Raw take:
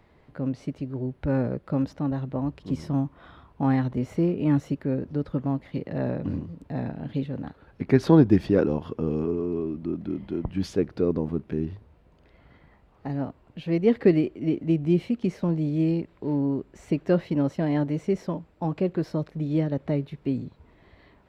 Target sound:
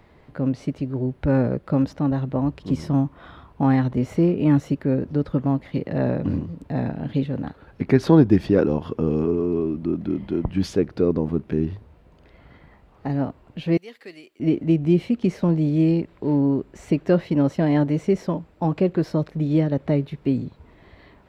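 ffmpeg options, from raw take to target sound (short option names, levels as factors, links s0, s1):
-filter_complex "[0:a]asplit=2[s0][s1];[s1]alimiter=limit=0.15:level=0:latency=1:release=481,volume=0.891[s2];[s0][s2]amix=inputs=2:normalize=0,asettb=1/sr,asplit=3[s3][s4][s5];[s3]atrim=end=13.774[s6];[s4]atrim=start=13.77:end=14.4,asetpts=PTS-STARTPTS,afade=t=in:d=0.004:c=qsin,afade=t=out:st=0.626:d=0.004:c=qsin,aderivative[s7];[s5]atrim=start=14.396[s8];[s6][s7]acrossfade=d=0.004:c1=hsin:c2=qsin[s9];[s9][s8]acrossfade=d=0.004:c1=qsin:c2=hsin"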